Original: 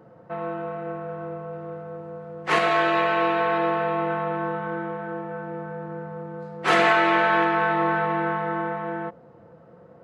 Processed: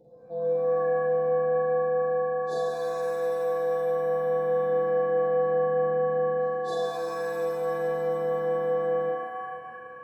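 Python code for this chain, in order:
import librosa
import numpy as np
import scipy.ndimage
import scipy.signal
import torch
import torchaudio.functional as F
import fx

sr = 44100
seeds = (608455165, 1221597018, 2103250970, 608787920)

y = fx.brickwall_bandstop(x, sr, low_hz=870.0, high_hz=3500.0)
y = fx.doubler(y, sr, ms=46.0, db=-3.0)
y = fx.rider(y, sr, range_db=5, speed_s=0.5)
y = fx.comb_fb(y, sr, f0_hz=500.0, decay_s=0.21, harmonics='all', damping=0.0, mix_pct=90)
y = fx.rev_shimmer(y, sr, seeds[0], rt60_s=1.9, semitones=7, shimmer_db=-2, drr_db=3.5)
y = y * librosa.db_to_amplitude(2.5)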